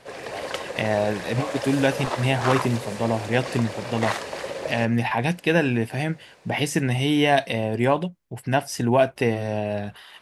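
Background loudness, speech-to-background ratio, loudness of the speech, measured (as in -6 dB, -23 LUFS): -31.0 LUFS, 7.0 dB, -24.0 LUFS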